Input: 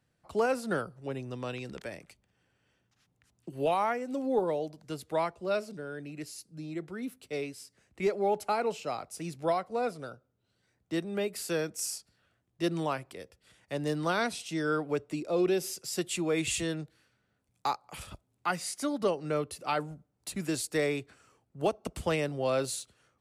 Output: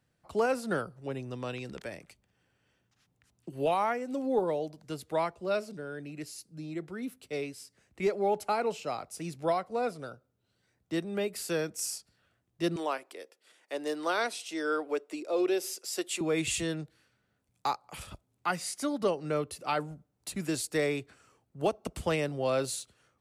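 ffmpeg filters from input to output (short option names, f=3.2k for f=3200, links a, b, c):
-filter_complex "[0:a]asettb=1/sr,asplit=3[a][b][c];[a]atrim=end=12.764[d];[b]atrim=start=12.76:end=16.21,asetpts=PTS-STARTPTS,afade=t=in:d=0.004:c=qsin,afade=t=out:st=3.446:d=0.004:c=qsin,highpass=f=310:w=0.5412,highpass=f=310:w=1.3066[e];[c]atrim=start=16.206[f];[d][e]acrossfade=d=0.004:c1=hsin:c2=qsin[g];[g][f]acrossfade=d=0.004:c1=qsin:c2=hsin"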